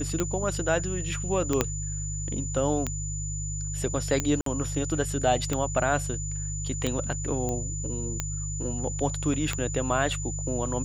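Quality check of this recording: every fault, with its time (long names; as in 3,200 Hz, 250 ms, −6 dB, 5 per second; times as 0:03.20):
mains hum 50 Hz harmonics 3 −33 dBFS
scratch tick 45 rpm −12 dBFS
whistle 7,000 Hz −35 dBFS
0:01.61: click −7 dBFS
0:04.41–0:04.46: drop-out 53 ms
0:07.49: click −18 dBFS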